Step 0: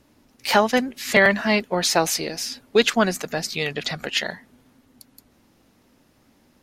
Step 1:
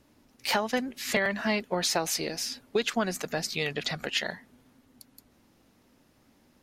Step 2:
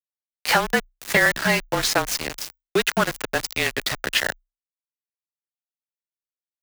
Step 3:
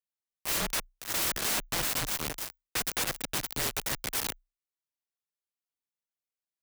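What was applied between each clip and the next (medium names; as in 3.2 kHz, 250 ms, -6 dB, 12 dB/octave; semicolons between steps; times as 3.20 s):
compression 6:1, threshold -19 dBFS, peak gain reduction 8.5 dB; trim -4 dB
dynamic bell 1.6 kHz, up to +7 dB, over -44 dBFS, Q 1.2; small samples zeroed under -26.5 dBFS; frequency shift -31 Hz; trim +5.5 dB
integer overflow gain 21.5 dB; trim -2.5 dB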